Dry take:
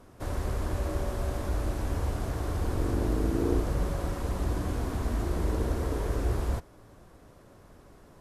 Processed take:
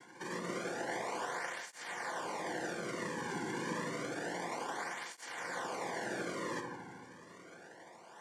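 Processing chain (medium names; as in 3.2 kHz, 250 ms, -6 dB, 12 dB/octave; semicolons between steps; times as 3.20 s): high-pass 460 Hz 24 dB/octave; treble shelf 4.4 kHz +11.5 dB; sample-rate reducer 2 kHz, jitter 0%; peak limiter -36 dBFS, peak gain reduction 12 dB; noise-vocoded speech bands 3; comb of notches 1.3 kHz; on a send: feedback echo behind a low-pass 78 ms, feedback 72%, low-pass 1.2 kHz, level -5 dB; on the sum: simulated room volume 450 m³, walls mixed, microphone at 0.85 m; cancelling through-zero flanger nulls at 0.29 Hz, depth 1.7 ms; trim +4.5 dB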